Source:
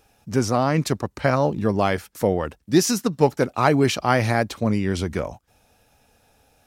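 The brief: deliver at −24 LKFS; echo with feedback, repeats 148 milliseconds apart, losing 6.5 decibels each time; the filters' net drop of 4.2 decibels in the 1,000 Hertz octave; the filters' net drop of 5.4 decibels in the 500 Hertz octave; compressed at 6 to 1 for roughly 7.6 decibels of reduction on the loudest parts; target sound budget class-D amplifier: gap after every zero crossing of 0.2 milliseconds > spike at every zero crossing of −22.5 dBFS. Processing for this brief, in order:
parametric band 500 Hz −6 dB
parametric band 1,000 Hz −3.5 dB
downward compressor 6 to 1, threshold −22 dBFS
repeating echo 148 ms, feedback 47%, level −6.5 dB
gap after every zero crossing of 0.2 ms
spike at every zero crossing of −22.5 dBFS
level +4 dB

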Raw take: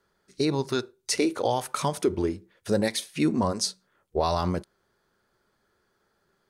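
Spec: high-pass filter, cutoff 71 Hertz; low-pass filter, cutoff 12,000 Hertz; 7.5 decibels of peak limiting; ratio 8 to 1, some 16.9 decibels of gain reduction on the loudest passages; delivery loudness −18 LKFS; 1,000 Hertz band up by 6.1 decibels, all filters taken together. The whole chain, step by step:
high-pass filter 71 Hz
low-pass filter 12,000 Hz
parametric band 1,000 Hz +7.5 dB
downward compressor 8 to 1, threshold −35 dBFS
level +23.5 dB
brickwall limiter −5 dBFS

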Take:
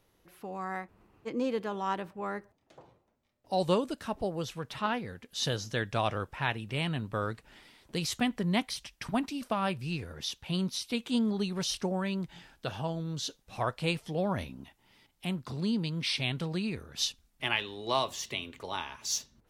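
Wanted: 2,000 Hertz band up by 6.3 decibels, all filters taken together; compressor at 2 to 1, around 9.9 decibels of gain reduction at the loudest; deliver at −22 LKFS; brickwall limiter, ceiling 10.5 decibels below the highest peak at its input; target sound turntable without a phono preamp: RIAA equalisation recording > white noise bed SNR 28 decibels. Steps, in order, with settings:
parametric band 2,000 Hz +4.5 dB
downward compressor 2 to 1, threshold −41 dBFS
brickwall limiter −30.5 dBFS
RIAA equalisation recording
white noise bed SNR 28 dB
level +17 dB

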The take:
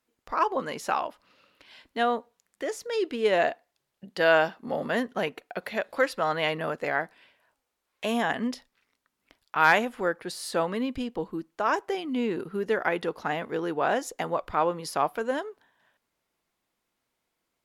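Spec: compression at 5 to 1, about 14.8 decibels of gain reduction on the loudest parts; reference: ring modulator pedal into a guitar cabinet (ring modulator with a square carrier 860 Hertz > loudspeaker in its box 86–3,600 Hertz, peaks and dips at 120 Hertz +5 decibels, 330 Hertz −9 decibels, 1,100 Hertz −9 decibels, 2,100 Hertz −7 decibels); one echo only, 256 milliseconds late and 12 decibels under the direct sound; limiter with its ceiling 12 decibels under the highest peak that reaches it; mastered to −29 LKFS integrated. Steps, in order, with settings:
downward compressor 5 to 1, threshold −33 dBFS
brickwall limiter −32.5 dBFS
single-tap delay 256 ms −12 dB
ring modulator with a square carrier 860 Hz
loudspeaker in its box 86–3,600 Hz, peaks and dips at 120 Hz +5 dB, 330 Hz −9 dB, 1,100 Hz −9 dB, 2,100 Hz −7 dB
level +16 dB

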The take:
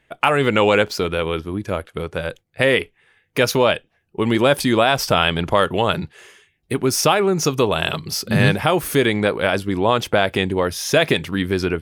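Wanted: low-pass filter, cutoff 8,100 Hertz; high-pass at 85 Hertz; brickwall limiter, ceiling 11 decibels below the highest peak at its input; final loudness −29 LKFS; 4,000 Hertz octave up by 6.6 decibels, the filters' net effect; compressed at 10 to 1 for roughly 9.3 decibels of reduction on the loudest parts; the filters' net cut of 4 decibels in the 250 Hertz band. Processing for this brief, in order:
high-pass filter 85 Hz
low-pass filter 8,100 Hz
parametric band 250 Hz −5.5 dB
parametric band 4,000 Hz +9 dB
downward compressor 10 to 1, threshold −19 dBFS
level −1.5 dB
brickwall limiter −16.5 dBFS

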